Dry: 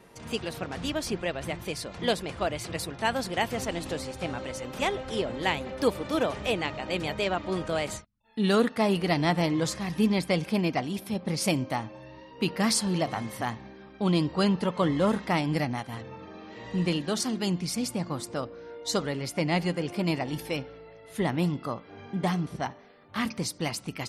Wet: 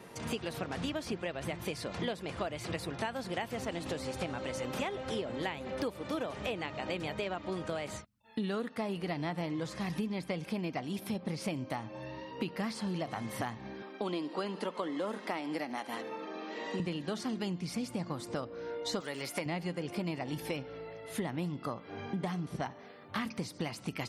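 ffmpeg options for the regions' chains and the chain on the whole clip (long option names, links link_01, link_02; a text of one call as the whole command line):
ffmpeg -i in.wav -filter_complex "[0:a]asettb=1/sr,asplit=3[link_01][link_02][link_03];[link_01]atrim=end=13.824[link_04];[link_02]atrim=start=13.82:end=16.8,asetpts=PTS-STARTPTS,afade=type=in:duration=0.004:curve=qsin,afade=type=out:start_time=2.976:duration=0.004:curve=qsin,highpass=frequency=250:width=0.5412,highpass=frequency=250:width=1.3066,aecho=1:1:72|144|216|288:0.0841|0.048|0.0273|0.0156,atrim=end_sample=131418[link_05];[link_03]atrim=start=16.796[link_06];[link_04][link_05]acrossfade=duration=0.004:curve1=hsin:curve2=qsin[link_07];[link_07][link_06]acrossfade=duration=0.004:curve1=qsin:curve2=hsin,asettb=1/sr,asplit=3[link_08][link_09][link_10];[link_08]atrim=end=19.004[link_11];[link_09]atrim=start=19:end=19.46,asetpts=PTS-STARTPTS,afade=type=in:duration=0.004:curve=qsin,afade=type=out:start_time=0.456:duration=0.004:curve=qsin,acrossover=split=2600[link_12][link_13];[link_13]acompressor=threshold=-44dB:ratio=4:attack=1:release=60[link_14];[link_12][link_14]amix=inputs=2:normalize=0,aemphasis=mode=production:type=riaa[link_15];[link_10]atrim=start=19.456[link_16];[link_11][link_15]acrossfade=duration=0.004:curve1=hsin:curve2=qsin[link_17];[link_17][link_16]acrossfade=duration=0.004:curve1=qsin:curve2=hsin,acrossover=split=3400[link_18][link_19];[link_19]acompressor=threshold=-42dB:ratio=4:attack=1:release=60[link_20];[link_18][link_20]amix=inputs=2:normalize=0,highpass=75,acompressor=threshold=-36dB:ratio=10,volume=3.5dB" out.wav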